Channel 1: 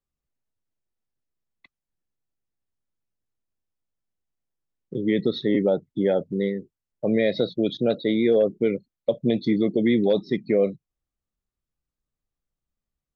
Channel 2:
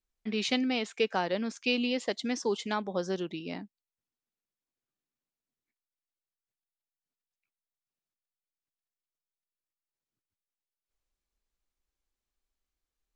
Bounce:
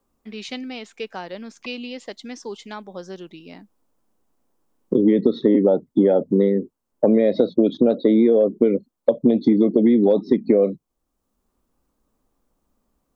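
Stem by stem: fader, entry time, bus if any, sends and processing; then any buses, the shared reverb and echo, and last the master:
+2.0 dB, 0.00 s, no send, octave-band graphic EQ 125/250/500/1,000/2,000/4,000 Hz −6/+11/+5/+9/−5/−4 dB; multiband upward and downward compressor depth 40%
−3.0 dB, 0.00 s, no send, no processing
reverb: not used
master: downward compressor, threshold −12 dBFS, peak gain reduction 7 dB

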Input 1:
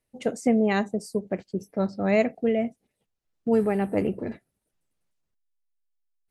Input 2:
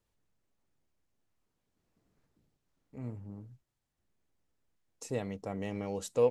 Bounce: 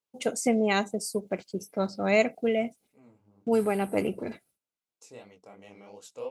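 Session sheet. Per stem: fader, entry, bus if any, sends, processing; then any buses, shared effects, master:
+1.0 dB, 0.00 s, no send, downward expander −55 dBFS
−5.0 dB, 0.00 s, no send, high-pass filter 170 Hz 6 dB per octave; high-shelf EQ 5,400 Hz −9 dB; chorus effect 3 Hz, delay 18 ms, depth 7.2 ms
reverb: not used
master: spectral tilt +2.5 dB per octave; notch filter 1,800 Hz, Q 6.5

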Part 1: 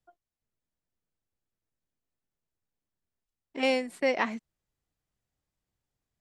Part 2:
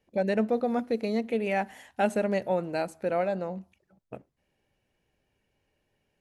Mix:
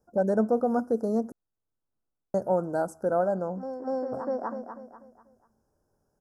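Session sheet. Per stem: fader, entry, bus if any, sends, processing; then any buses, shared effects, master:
+2.0 dB, 0.00 s, no send, echo send −5 dB, low-pass filter 2,500 Hz 12 dB per octave; mains-hum notches 60/120/180/240 Hz; automatic ducking −11 dB, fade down 0.30 s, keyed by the second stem
+2.5 dB, 0.00 s, muted 0:01.32–0:02.34, no send, no echo send, no processing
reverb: not used
echo: repeating echo 245 ms, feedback 38%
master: Chebyshev band-stop filter 1,500–5,100 Hz, order 4

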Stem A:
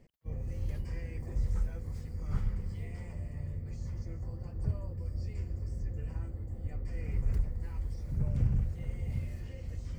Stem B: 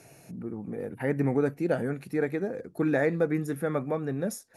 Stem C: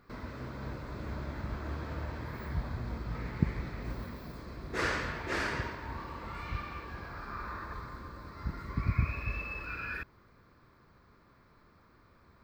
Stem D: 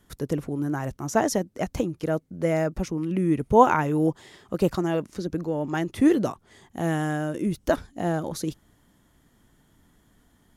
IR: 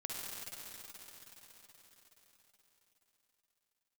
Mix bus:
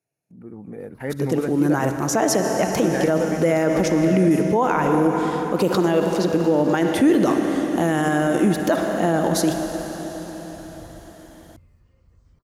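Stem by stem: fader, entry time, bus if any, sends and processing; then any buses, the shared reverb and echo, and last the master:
−17.0 dB, 2.40 s, no send, no processing
−8.5 dB, 0.00 s, no send, noise gate −42 dBFS, range −23 dB; automatic gain control gain up to 9 dB
−9.0 dB, 0.85 s, no send, downward compressor, threshold −41 dBFS, peak gain reduction 19.5 dB; parametric band 2,300 Hz −14.5 dB 1.1 octaves
+2.0 dB, 1.00 s, send −3.5 dB, high-pass filter 190 Hz 12 dB per octave; automatic gain control gain up to 7 dB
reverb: on, RT60 5.0 s, pre-delay 47 ms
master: brickwall limiter −9 dBFS, peak gain reduction 12.5 dB

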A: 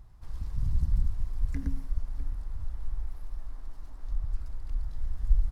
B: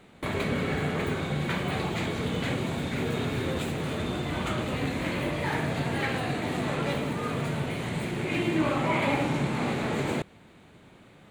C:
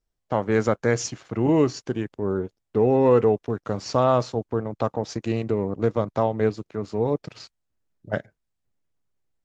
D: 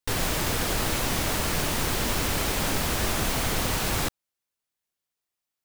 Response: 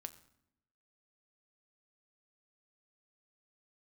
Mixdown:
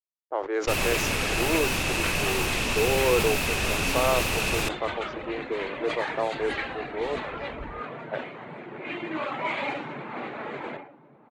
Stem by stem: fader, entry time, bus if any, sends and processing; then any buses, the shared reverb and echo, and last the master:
+2.5 dB, 2.30 s, no send, no echo send, high-pass filter 140 Hz 12 dB per octave
0.0 dB, 0.55 s, no send, echo send −16.5 dB, meter weighting curve A; reverb reduction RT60 0.62 s; hum removal 90.89 Hz, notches 36
−4.5 dB, 0.00 s, no send, no echo send, elliptic high-pass filter 330 Hz, stop band 40 dB; dead-zone distortion −51.5 dBFS
−2.0 dB, 0.60 s, no send, no echo send, parametric band 2,600 Hz +15 dB 0.22 octaves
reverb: not used
echo: single-tap delay 1,139 ms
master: low-pass that shuts in the quiet parts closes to 710 Hz, open at −21 dBFS; level that may fall only so fast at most 100 dB per second

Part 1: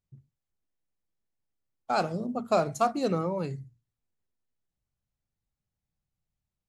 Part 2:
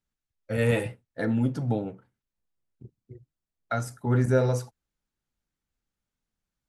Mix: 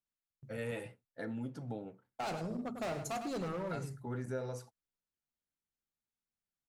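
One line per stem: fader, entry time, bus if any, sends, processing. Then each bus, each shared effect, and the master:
−3.5 dB, 0.30 s, no send, echo send −9 dB, noise gate with hold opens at −46 dBFS; high-shelf EQ 8,700 Hz +5.5 dB; hard clipping −28.5 dBFS, distortion −6 dB
−10.5 dB, 0.00 s, no send, no echo send, low-shelf EQ 110 Hz −11 dB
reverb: not used
echo: single-tap delay 101 ms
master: downward compressor 2 to 1, threshold −38 dBFS, peak gain reduction 6 dB

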